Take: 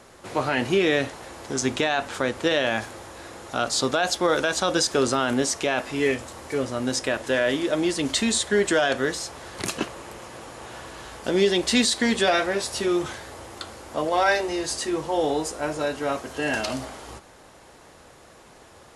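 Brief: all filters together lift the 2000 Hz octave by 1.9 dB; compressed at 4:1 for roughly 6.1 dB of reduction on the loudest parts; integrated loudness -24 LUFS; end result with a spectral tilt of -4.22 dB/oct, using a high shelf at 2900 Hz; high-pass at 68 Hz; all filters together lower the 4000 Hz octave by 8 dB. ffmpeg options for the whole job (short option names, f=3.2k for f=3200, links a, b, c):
-af "highpass=68,equalizer=f=2k:t=o:g=6.5,highshelf=f=2.9k:g=-7.5,equalizer=f=4k:t=o:g=-6.5,acompressor=threshold=-23dB:ratio=4,volume=4.5dB"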